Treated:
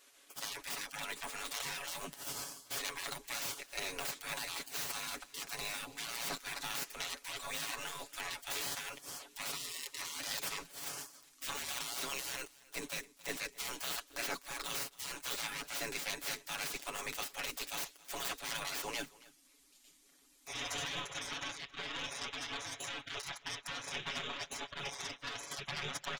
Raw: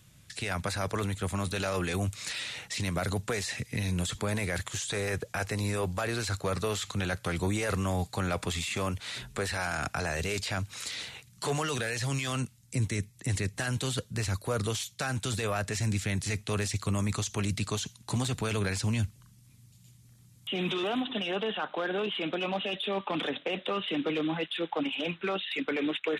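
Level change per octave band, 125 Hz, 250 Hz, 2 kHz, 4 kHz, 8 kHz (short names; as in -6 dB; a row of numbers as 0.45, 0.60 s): -25.0, -20.0, -6.5, -4.5, -3.0 dB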